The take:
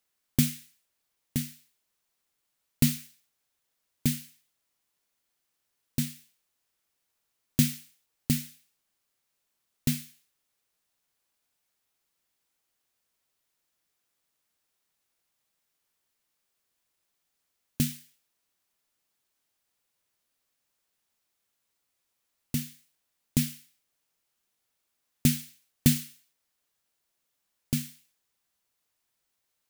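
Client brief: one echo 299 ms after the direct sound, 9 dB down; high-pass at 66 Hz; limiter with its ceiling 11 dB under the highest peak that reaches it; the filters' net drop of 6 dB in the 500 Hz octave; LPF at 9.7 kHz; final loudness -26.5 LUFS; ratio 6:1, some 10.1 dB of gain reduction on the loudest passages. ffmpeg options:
-af "highpass=66,lowpass=9700,equalizer=f=500:t=o:g=-9,acompressor=threshold=0.0316:ratio=6,alimiter=level_in=1.06:limit=0.0631:level=0:latency=1,volume=0.944,aecho=1:1:299:0.355,volume=8.41"

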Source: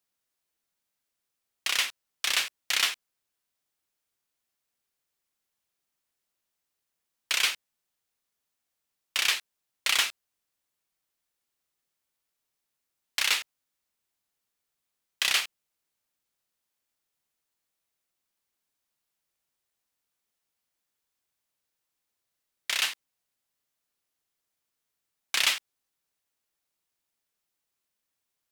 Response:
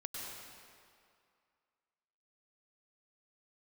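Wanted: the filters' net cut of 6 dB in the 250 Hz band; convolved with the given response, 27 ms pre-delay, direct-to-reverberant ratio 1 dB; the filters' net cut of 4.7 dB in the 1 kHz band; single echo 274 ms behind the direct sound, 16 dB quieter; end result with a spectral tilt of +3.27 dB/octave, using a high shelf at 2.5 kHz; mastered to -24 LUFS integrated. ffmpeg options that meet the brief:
-filter_complex "[0:a]equalizer=f=250:t=o:g=-8,equalizer=f=1000:t=o:g=-8,highshelf=f=2500:g=7,aecho=1:1:274:0.158,asplit=2[s0][s1];[1:a]atrim=start_sample=2205,adelay=27[s2];[s1][s2]afir=irnorm=-1:irlink=0,volume=0.891[s3];[s0][s3]amix=inputs=2:normalize=0,volume=0.841"

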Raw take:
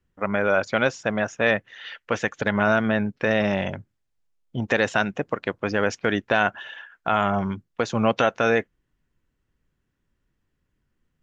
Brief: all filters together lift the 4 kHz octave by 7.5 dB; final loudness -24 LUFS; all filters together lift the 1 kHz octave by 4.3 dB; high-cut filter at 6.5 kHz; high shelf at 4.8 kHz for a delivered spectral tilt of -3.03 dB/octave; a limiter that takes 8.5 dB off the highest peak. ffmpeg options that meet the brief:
-af "lowpass=6500,equalizer=f=1000:t=o:g=5.5,equalizer=f=4000:t=o:g=7,highshelf=f=4800:g=6.5,volume=1.12,alimiter=limit=0.376:level=0:latency=1"

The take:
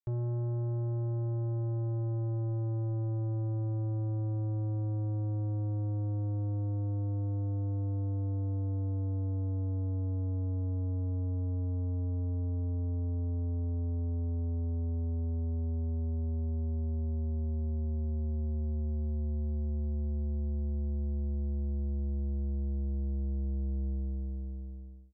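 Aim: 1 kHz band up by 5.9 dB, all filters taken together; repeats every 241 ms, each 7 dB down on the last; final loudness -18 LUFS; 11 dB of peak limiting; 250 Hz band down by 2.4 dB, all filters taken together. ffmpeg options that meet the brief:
-af "equalizer=f=250:t=o:g=-3.5,equalizer=f=1000:t=o:g=8.5,alimiter=level_in=7.5:limit=0.0631:level=0:latency=1,volume=0.133,aecho=1:1:241|482|723|964|1205:0.447|0.201|0.0905|0.0407|0.0183,volume=21.1"

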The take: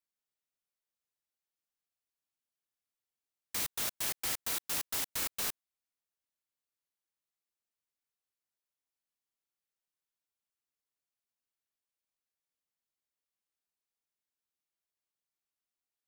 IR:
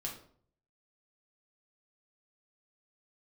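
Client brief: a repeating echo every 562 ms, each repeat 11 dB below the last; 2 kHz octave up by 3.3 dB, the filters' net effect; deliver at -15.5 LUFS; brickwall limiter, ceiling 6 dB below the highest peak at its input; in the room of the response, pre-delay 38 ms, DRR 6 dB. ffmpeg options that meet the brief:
-filter_complex "[0:a]equalizer=f=2000:t=o:g=4,alimiter=level_in=1.33:limit=0.0631:level=0:latency=1,volume=0.75,aecho=1:1:562|1124|1686:0.282|0.0789|0.0221,asplit=2[s0][s1];[1:a]atrim=start_sample=2205,adelay=38[s2];[s1][s2]afir=irnorm=-1:irlink=0,volume=0.531[s3];[s0][s3]amix=inputs=2:normalize=0,volume=11.2"

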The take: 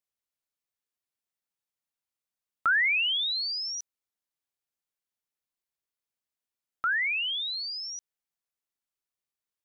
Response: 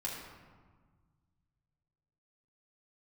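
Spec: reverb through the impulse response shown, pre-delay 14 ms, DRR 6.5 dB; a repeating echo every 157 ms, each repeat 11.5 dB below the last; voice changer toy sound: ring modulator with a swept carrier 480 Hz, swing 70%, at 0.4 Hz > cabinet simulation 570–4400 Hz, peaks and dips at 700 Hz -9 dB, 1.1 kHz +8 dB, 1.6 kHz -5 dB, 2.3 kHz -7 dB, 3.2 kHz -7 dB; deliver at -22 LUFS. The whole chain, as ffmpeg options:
-filter_complex "[0:a]aecho=1:1:157|314|471:0.266|0.0718|0.0194,asplit=2[s0][s1];[1:a]atrim=start_sample=2205,adelay=14[s2];[s1][s2]afir=irnorm=-1:irlink=0,volume=0.376[s3];[s0][s3]amix=inputs=2:normalize=0,aeval=exprs='val(0)*sin(2*PI*480*n/s+480*0.7/0.4*sin(2*PI*0.4*n/s))':c=same,highpass=570,equalizer=f=700:t=q:w=4:g=-9,equalizer=f=1100:t=q:w=4:g=8,equalizer=f=1600:t=q:w=4:g=-5,equalizer=f=2300:t=q:w=4:g=-7,equalizer=f=3200:t=q:w=4:g=-7,lowpass=f=4400:w=0.5412,lowpass=f=4400:w=1.3066,volume=3.35"

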